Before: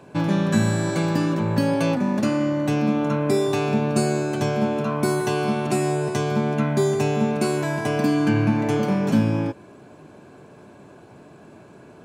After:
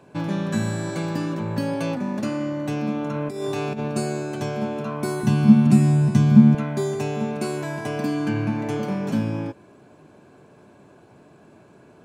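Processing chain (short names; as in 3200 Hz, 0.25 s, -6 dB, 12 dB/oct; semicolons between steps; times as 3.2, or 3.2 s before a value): 3.11–3.88 negative-ratio compressor -22 dBFS, ratio -0.5; 5.23–6.55 resonant low shelf 300 Hz +11.5 dB, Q 3; gain -4.5 dB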